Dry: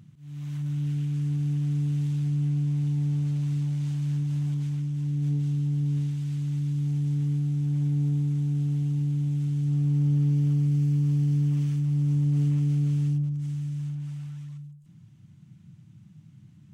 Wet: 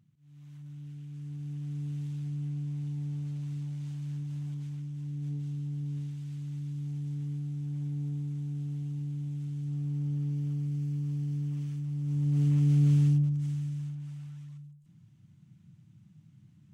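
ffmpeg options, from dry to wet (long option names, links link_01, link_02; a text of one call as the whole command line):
ffmpeg -i in.wav -af "volume=2.5dB,afade=type=in:start_time=1.02:duration=0.87:silence=0.473151,afade=type=in:start_time=12.02:duration=0.91:silence=0.266073,afade=type=out:start_time=12.93:duration=1.03:silence=0.375837" out.wav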